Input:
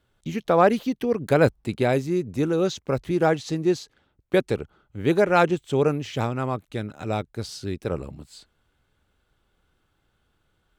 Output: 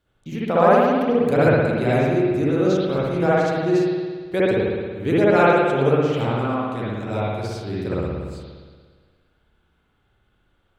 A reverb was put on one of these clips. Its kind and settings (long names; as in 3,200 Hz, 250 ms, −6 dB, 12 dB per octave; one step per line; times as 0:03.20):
spring reverb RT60 1.6 s, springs 58 ms, chirp 55 ms, DRR −8 dB
level −4.5 dB